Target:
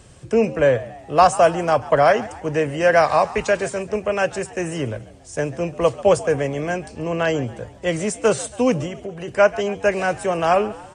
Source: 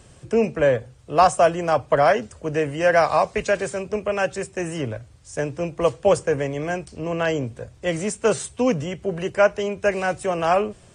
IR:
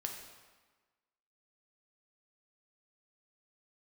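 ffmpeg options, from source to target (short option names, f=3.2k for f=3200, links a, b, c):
-filter_complex "[0:a]asettb=1/sr,asplit=3[a][b][c];[a]atrim=end=8.864[d];[b]atrim=start=8.86:end=9.28,asetpts=PTS-STARTPTS,afade=t=in:d=0.004:c=qsin,afade=t=out:st=0.416:d=0.004:c=qsin,acompressor=threshold=-30dB:ratio=6[e];[c]atrim=start=9.276[f];[d][e]acrossfade=d=0.004:c1=hsin:c2=qsin[g];[g][f]acrossfade=d=0.004:c1=qsin:c2=hsin,asplit=2[h][i];[i]asplit=4[j][k][l][m];[j]adelay=139,afreqshift=79,volume=-18.5dB[n];[k]adelay=278,afreqshift=158,volume=-25.2dB[o];[l]adelay=417,afreqshift=237,volume=-32dB[p];[m]adelay=556,afreqshift=316,volume=-38.7dB[q];[n][o][p][q]amix=inputs=4:normalize=0[r];[h][r]amix=inputs=2:normalize=0,volume=2dB"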